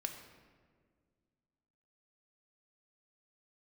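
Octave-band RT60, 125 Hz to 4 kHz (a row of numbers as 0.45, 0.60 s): 2.5, 2.5, 2.1, 1.6, 1.4, 1.0 s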